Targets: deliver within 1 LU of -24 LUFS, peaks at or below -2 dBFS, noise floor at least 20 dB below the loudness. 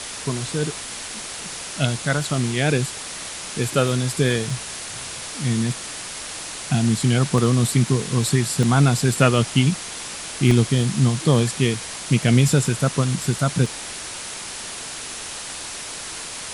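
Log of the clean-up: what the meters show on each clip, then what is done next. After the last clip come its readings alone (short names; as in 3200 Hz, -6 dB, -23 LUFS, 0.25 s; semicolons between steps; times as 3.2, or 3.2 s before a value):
dropouts 5; longest dropout 1.9 ms; noise floor -33 dBFS; noise floor target -42 dBFS; loudness -22.0 LUFS; peak -2.5 dBFS; loudness target -24.0 LUFS
-> interpolate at 4.5/7.38/8.63/10.51/13.66, 1.9 ms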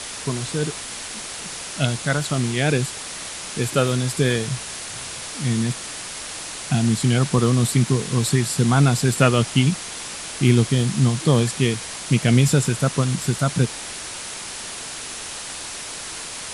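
dropouts 0; noise floor -33 dBFS; noise floor target -42 dBFS
-> denoiser 9 dB, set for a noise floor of -33 dBFS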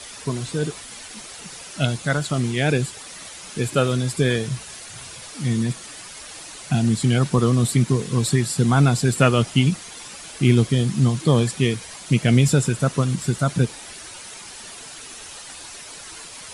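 noise floor -39 dBFS; noise floor target -41 dBFS
-> denoiser 6 dB, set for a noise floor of -39 dBFS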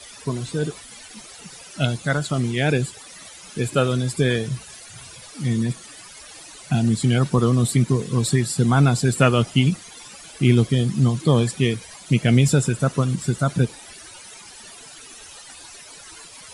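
noise floor -43 dBFS; loudness -21.0 LUFS; peak -3.0 dBFS; loudness target -24.0 LUFS
-> gain -3 dB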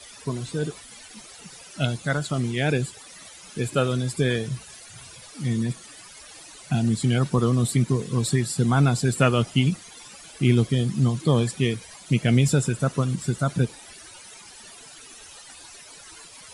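loudness -24.0 LUFS; peak -6.0 dBFS; noise floor -46 dBFS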